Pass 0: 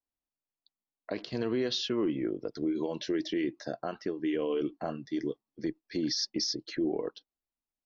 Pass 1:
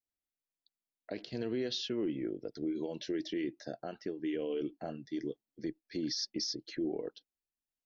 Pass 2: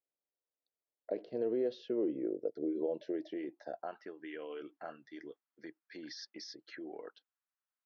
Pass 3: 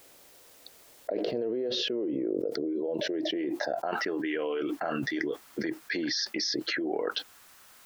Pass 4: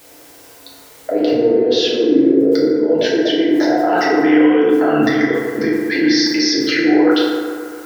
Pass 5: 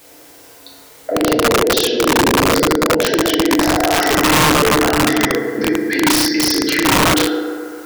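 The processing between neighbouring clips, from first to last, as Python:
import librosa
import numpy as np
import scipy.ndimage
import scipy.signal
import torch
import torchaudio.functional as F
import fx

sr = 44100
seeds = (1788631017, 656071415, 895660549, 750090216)

y1 = fx.peak_eq(x, sr, hz=1100.0, db=-12.5, octaves=0.49)
y1 = y1 * librosa.db_to_amplitude(-4.5)
y2 = fx.filter_sweep_bandpass(y1, sr, from_hz=510.0, to_hz=1300.0, start_s=2.87, end_s=4.26, q=2.2)
y2 = y2 * librosa.db_to_amplitude(7.0)
y3 = fx.env_flatten(y2, sr, amount_pct=100)
y4 = fx.rev_fdn(y3, sr, rt60_s=2.2, lf_ratio=0.85, hf_ratio=0.35, size_ms=20.0, drr_db=-6.0)
y4 = y4 * librosa.db_to_amplitude(8.0)
y5 = (np.mod(10.0 ** (7.5 / 20.0) * y4 + 1.0, 2.0) - 1.0) / 10.0 ** (7.5 / 20.0)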